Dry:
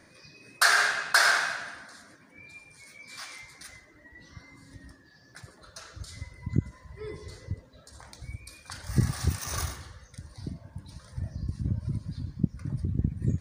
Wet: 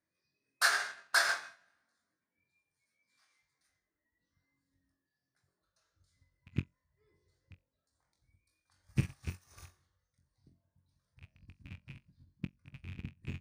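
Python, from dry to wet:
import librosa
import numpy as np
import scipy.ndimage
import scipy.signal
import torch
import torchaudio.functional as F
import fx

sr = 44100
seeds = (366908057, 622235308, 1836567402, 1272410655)

y = fx.rattle_buzz(x, sr, strikes_db=-27.0, level_db=-21.0)
y = fx.room_flutter(y, sr, wall_m=3.8, rt60_s=0.24)
y = fx.upward_expand(y, sr, threshold_db=-35.0, expansion=2.5)
y = F.gain(torch.from_numpy(y), -6.0).numpy()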